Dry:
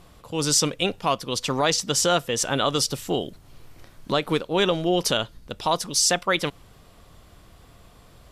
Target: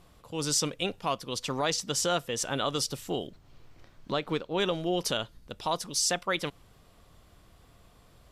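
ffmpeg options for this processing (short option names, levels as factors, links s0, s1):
-filter_complex "[0:a]asettb=1/sr,asplit=3[s0][s1][s2];[s0]atrim=end=3.274[s3];[s1]atrim=start=3.27:end=4.6,asetpts=PTS-STARTPTS,afade=t=in:d=0.004:c=qsin,afade=t=out:st=1.326:d=0.004:c=qsin,equalizer=f=11000:w=1.2:g=-13[s4];[s2]atrim=start=4.596[s5];[s3][s4]acrossfade=d=0.004:c1=hsin:c2=qsin[s6];[s6][s5]acrossfade=d=0.004:c1=qsin:c2=hsin,volume=0.447"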